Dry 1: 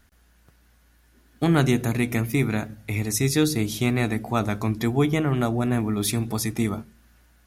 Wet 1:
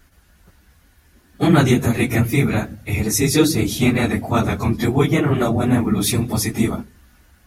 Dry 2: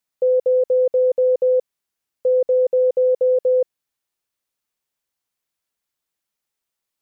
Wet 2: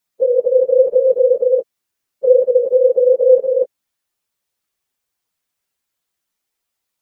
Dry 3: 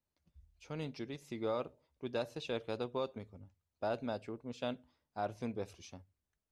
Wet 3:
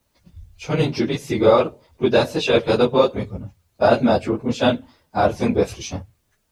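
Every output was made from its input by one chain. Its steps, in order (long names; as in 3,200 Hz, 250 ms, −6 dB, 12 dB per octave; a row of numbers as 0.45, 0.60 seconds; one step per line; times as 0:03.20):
random phases in long frames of 50 ms
normalise the peak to −1.5 dBFS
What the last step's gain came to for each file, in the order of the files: +6.0, +4.5, +21.5 decibels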